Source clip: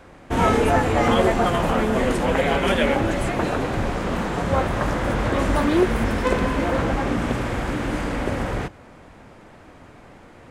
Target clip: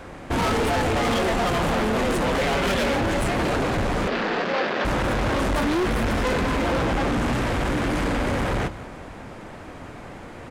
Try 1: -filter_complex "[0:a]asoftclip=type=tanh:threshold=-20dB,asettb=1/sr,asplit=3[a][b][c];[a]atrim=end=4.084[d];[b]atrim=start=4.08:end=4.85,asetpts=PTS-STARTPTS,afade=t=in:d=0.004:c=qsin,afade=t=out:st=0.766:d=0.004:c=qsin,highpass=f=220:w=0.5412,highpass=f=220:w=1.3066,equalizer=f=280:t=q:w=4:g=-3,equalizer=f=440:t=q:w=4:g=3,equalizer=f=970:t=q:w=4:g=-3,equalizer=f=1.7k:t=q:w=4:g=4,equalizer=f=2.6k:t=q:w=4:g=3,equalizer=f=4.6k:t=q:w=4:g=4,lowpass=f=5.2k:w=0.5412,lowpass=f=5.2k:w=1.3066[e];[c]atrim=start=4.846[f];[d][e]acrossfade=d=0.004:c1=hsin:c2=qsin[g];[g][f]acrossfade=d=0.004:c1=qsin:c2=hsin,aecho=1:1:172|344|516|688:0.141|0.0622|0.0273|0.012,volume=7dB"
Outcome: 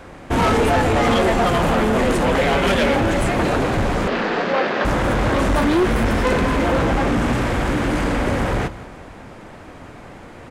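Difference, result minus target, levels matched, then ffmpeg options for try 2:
soft clip: distortion -5 dB
-filter_complex "[0:a]asoftclip=type=tanh:threshold=-27.5dB,asettb=1/sr,asplit=3[a][b][c];[a]atrim=end=4.084[d];[b]atrim=start=4.08:end=4.85,asetpts=PTS-STARTPTS,afade=t=in:d=0.004:c=qsin,afade=t=out:st=0.766:d=0.004:c=qsin,highpass=f=220:w=0.5412,highpass=f=220:w=1.3066,equalizer=f=280:t=q:w=4:g=-3,equalizer=f=440:t=q:w=4:g=3,equalizer=f=970:t=q:w=4:g=-3,equalizer=f=1.7k:t=q:w=4:g=4,equalizer=f=2.6k:t=q:w=4:g=3,equalizer=f=4.6k:t=q:w=4:g=4,lowpass=f=5.2k:w=0.5412,lowpass=f=5.2k:w=1.3066[e];[c]atrim=start=4.846[f];[d][e]acrossfade=d=0.004:c1=hsin:c2=qsin[g];[g][f]acrossfade=d=0.004:c1=qsin:c2=hsin,aecho=1:1:172|344|516|688:0.141|0.0622|0.0273|0.012,volume=7dB"

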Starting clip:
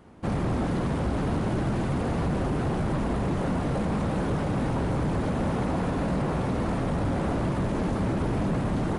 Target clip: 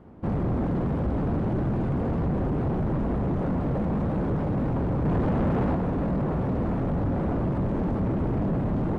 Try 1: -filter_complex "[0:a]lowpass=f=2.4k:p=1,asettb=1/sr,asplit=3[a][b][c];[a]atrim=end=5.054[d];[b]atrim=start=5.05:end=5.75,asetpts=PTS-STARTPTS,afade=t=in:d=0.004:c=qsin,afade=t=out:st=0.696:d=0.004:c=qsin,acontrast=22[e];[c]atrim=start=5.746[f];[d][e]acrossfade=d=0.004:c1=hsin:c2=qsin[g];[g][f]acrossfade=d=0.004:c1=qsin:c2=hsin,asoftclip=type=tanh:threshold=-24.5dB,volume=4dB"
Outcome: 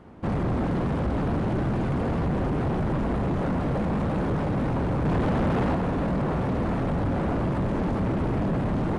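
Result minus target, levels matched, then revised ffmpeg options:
2000 Hz band +6.0 dB
-filter_complex "[0:a]lowpass=f=670:p=1,asettb=1/sr,asplit=3[a][b][c];[a]atrim=end=5.054[d];[b]atrim=start=5.05:end=5.75,asetpts=PTS-STARTPTS,afade=t=in:d=0.004:c=qsin,afade=t=out:st=0.696:d=0.004:c=qsin,acontrast=22[e];[c]atrim=start=5.746[f];[d][e]acrossfade=d=0.004:c1=hsin:c2=qsin[g];[g][f]acrossfade=d=0.004:c1=qsin:c2=hsin,asoftclip=type=tanh:threshold=-24.5dB,volume=4dB"

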